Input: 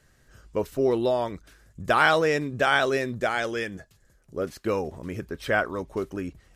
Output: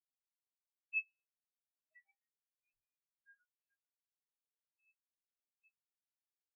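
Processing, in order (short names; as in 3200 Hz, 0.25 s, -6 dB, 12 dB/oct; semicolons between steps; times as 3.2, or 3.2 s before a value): random spectral dropouts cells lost 85%; HPF 530 Hz 12 dB/oct; bell 1700 Hz -7.5 dB 2.7 oct; resonator bank E3 fifth, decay 0.63 s; inverted band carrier 3100 Hz; on a send: echo with dull and thin repeats by turns 0.439 s, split 2000 Hz, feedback 76%, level -9 dB; on the sum: reverb RT60 5.3 s, pre-delay 40 ms, DRR 14 dB; phaser 0.34 Hz, delay 2.3 ms, feedback 60%; spectral expander 4:1; gain +8.5 dB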